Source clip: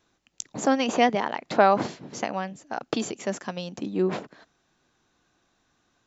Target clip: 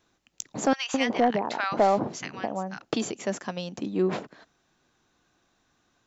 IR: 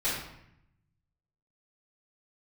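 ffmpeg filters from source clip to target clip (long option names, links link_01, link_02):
-filter_complex "[0:a]asettb=1/sr,asplit=3[link_01][link_02][link_03];[link_01]atrim=end=0.734[link_04];[link_02]atrim=start=0.73:end=2.85,asetpts=PTS-STARTPTS,afade=type=in:duration=0.004:curve=qsin,afade=type=out:start_time=2.116:duration=0.004:curve=qsin,acrossover=split=1200[link_05][link_06];[link_05]adelay=210[link_07];[link_07][link_06]amix=inputs=2:normalize=0,atrim=end_sample=93492[link_08];[link_03]atrim=start=2.846[link_09];[link_04][link_08]acrossfade=duration=0.004:curve1=hsin:curve2=qsin[link_10];[link_10][link_09]acrossfade=duration=0.004:curve1=qsin:curve2=hsin,asoftclip=type=tanh:threshold=-10.5dB"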